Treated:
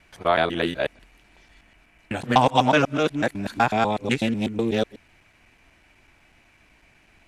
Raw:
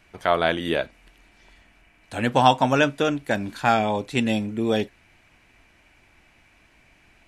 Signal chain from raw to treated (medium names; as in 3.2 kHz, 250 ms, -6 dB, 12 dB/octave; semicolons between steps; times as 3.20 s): time reversed locally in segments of 124 ms; loudspeaker Doppler distortion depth 0.15 ms